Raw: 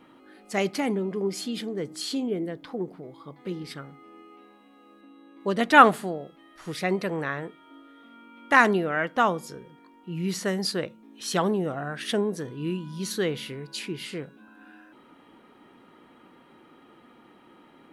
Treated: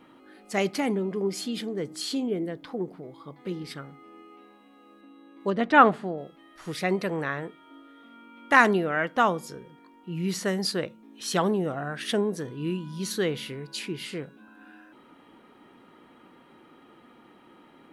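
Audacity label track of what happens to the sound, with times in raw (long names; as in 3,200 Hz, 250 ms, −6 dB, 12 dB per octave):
5.500000	6.180000	head-to-tape spacing loss at 10 kHz 21 dB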